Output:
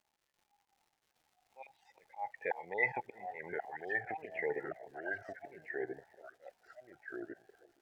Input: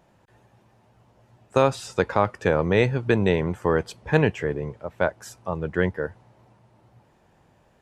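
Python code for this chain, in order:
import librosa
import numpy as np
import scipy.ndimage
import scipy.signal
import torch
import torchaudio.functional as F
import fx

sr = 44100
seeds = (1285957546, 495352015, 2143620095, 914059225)

p1 = fx.spec_dropout(x, sr, seeds[0], share_pct=24)
p2 = fx.noise_reduce_blind(p1, sr, reduce_db=9)
p3 = fx.level_steps(p2, sr, step_db=15)
p4 = fx.double_bandpass(p3, sr, hz=1300.0, octaves=1.3)
p5 = fx.auto_swell(p4, sr, attack_ms=391.0)
p6 = fx.dmg_crackle(p5, sr, seeds[1], per_s=190.0, level_db=-56.0)
p7 = p6 + fx.echo_single(p6, sr, ms=371, db=-18.5, dry=0)
p8 = fx.echo_pitch(p7, sr, ms=774, semitones=-2, count=2, db_per_echo=-3.0)
p9 = fx.spectral_expand(p8, sr, expansion=1.5)
y = p9 * 10.0 ** (15.0 / 20.0)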